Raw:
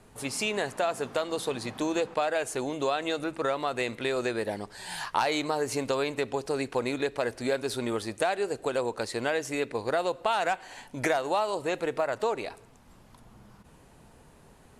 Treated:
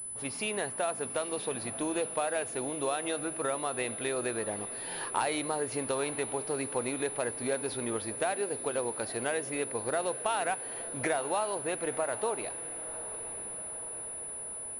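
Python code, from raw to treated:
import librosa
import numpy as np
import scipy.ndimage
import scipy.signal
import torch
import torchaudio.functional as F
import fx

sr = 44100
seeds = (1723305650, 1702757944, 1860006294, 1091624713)

y = fx.echo_diffused(x, sr, ms=910, feedback_pct=65, wet_db=-15.5)
y = fx.pwm(y, sr, carrier_hz=10000.0)
y = y * 10.0 ** (-4.0 / 20.0)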